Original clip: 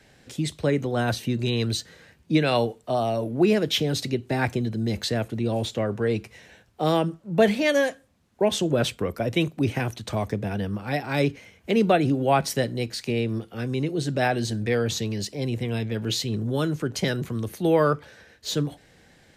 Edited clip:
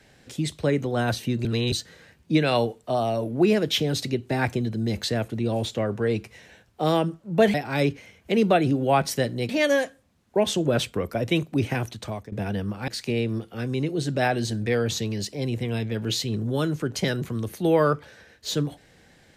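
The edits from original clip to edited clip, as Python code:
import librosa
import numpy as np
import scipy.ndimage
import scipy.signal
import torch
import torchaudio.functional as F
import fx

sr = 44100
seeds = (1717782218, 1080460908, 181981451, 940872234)

y = fx.edit(x, sr, fx.reverse_span(start_s=1.45, length_s=0.27),
    fx.fade_out_to(start_s=9.94, length_s=0.43, floor_db=-17.5),
    fx.move(start_s=10.93, length_s=1.95, to_s=7.54), tone=tone)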